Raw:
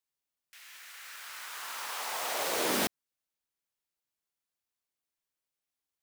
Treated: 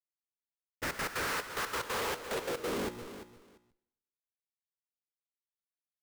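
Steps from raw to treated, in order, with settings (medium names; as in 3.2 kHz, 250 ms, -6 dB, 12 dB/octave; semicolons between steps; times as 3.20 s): low-pass 1.7 kHz 12 dB/octave; hum notches 60/120/180/240/300/360 Hz; gate with hold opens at -47 dBFS; resonant low shelf 570 Hz +7 dB, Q 3; in parallel at +0.5 dB: compressor with a negative ratio -39 dBFS; on the sum: Schmitt trigger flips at -48.5 dBFS; trance gate ".x.x.xxx." 182 bpm -12 dB; feedback delay 344 ms, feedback 18%, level -12 dB; on a send at -23 dB: reverberation RT60 0.90 s, pre-delay 103 ms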